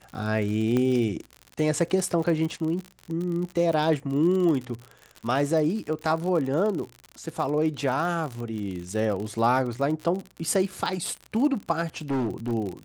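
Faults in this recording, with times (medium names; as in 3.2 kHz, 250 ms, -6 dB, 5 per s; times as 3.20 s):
crackle 68 per s -31 dBFS
0.77 s: pop -14 dBFS
12.10–12.53 s: clipped -23 dBFS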